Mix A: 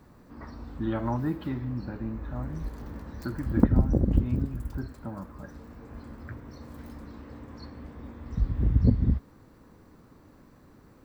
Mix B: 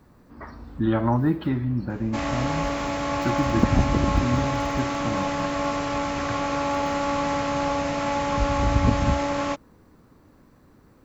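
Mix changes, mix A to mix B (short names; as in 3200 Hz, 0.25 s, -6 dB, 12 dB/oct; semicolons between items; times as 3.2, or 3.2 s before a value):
speech +7.5 dB; second sound: unmuted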